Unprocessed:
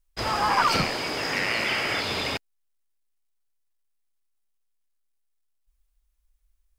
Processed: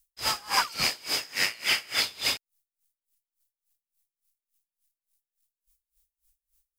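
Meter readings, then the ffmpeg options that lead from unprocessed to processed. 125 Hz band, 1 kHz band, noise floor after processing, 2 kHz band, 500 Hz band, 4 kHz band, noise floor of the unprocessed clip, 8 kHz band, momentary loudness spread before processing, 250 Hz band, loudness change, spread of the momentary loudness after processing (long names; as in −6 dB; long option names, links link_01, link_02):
−12.5 dB, −8.0 dB, below −85 dBFS, −3.0 dB, −11.0 dB, +1.5 dB, −72 dBFS, +5.5 dB, 7 LU, −12.5 dB, −2.0 dB, 5 LU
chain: -af "crystalizer=i=8.5:c=0,aeval=exprs='val(0)*pow(10,-26*(0.5-0.5*cos(2*PI*3.5*n/s))/20)':channel_layout=same,volume=-6.5dB"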